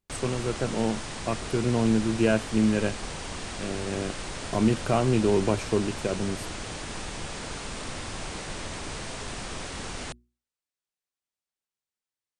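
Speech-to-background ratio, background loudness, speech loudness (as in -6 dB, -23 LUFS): 8.5 dB, -35.5 LUFS, -27.0 LUFS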